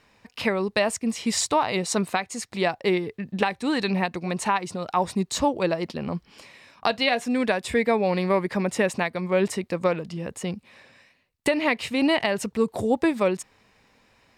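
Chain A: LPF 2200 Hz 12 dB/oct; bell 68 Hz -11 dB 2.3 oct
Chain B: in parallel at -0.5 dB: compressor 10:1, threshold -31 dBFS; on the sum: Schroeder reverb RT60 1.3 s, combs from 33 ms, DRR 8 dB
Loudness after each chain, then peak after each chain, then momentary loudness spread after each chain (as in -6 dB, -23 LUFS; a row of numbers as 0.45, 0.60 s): -27.0, -22.5 LUFS; -7.0, -4.0 dBFS; 9, 8 LU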